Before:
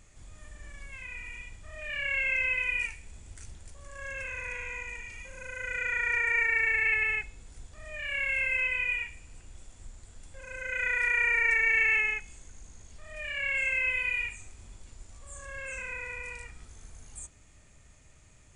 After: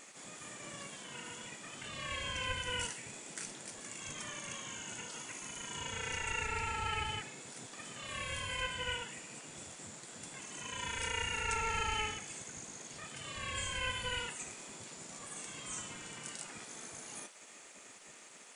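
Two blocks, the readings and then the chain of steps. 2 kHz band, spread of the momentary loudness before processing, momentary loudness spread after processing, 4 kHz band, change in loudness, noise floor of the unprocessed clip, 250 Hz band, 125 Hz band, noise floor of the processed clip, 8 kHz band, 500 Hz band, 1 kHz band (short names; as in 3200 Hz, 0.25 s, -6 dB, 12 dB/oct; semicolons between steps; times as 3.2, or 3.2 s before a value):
-14.0 dB, 21 LU, 12 LU, +6.0 dB, -12.0 dB, -56 dBFS, n/a, +1.5 dB, -55 dBFS, +8.0 dB, -2.5 dB, +3.5 dB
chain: spectral gate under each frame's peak -20 dB weak; gain +10 dB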